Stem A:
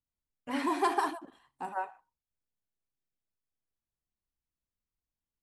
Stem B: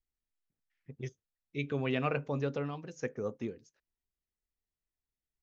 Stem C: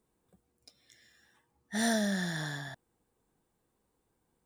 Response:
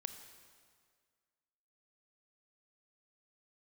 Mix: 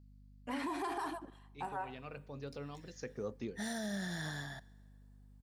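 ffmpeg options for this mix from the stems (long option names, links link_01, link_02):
-filter_complex "[0:a]aeval=exprs='val(0)+0.00158*(sin(2*PI*50*n/s)+sin(2*PI*2*50*n/s)/2+sin(2*PI*3*50*n/s)/3+sin(2*PI*4*50*n/s)/4+sin(2*PI*5*50*n/s)/5)':channel_layout=same,volume=-2dB,asplit=3[link_01][link_02][link_03];[link_02]volume=-22.5dB[link_04];[1:a]equalizer=frequency=4500:width=2.7:gain=13.5,volume=-4dB,asplit=2[link_05][link_06];[link_06]volume=-22dB[link_07];[2:a]adelay=1850,volume=-5.5dB,asplit=2[link_08][link_09];[link_09]volume=-11dB[link_10];[link_03]apad=whole_len=239175[link_11];[link_05][link_11]sidechaincompress=threshold=-49dB:ratio=10:attack=9.8:release=1020[link_12];[3:a]atrim=start_sample=2205[link_13];[link_04][link_07][link_10]amix=inputs=3:normalize=0[link_14];[link_14][link_13]afir=irnorm=-1:irlink=0[link_15];[link_01][link_12][link_08][link_15]amix=inputs=4:normalize=0,alimiter=level_in=6.5dB:limit=-24dB:level=0:latency=1:release=56,volume=-6.5dB"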